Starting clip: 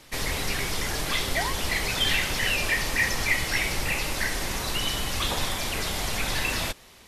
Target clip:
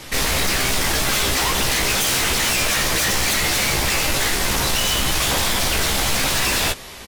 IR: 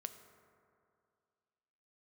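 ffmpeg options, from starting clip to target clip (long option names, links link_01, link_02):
-filter_complex "[0:a]aeval=exprs='0.316*sin(PI/2*7.08*val(0)/0.316)':channel_layout=same,asplit=2[link_01][link_02];[link_02]adelay=15,volume=-5dB[link_03];[link_01][link_03]amix=inputs=2:normalize=0,volume=-7.5dB"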